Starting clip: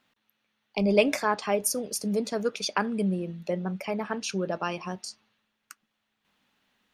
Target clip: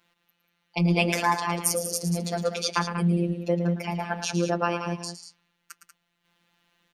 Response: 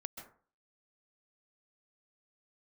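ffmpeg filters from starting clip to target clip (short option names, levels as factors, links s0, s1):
-af "aecho=1:1:110.8|189.5:0.316|0.316,afftfilt=real='hypot(re,im)*cos(PI*b)':imag='0':win_size=1024:overlap=0.75,volume=1.88"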